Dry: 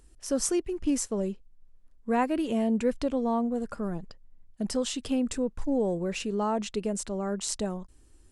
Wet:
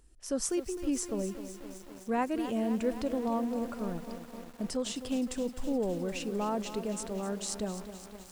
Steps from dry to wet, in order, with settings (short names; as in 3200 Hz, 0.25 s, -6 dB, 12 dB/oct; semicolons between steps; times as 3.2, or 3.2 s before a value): lo-fi delay 0.258 s, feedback 80%, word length 7-bit, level -11 dB; gain -4.5 dB